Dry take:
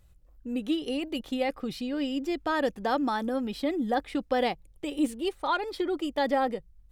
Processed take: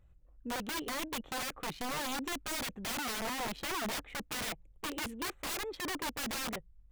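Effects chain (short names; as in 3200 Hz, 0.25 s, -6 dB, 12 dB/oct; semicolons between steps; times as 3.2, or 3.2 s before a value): Wiener smoothing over 9 samples; wrapped overs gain 28.5 dB; gain -3.5 dB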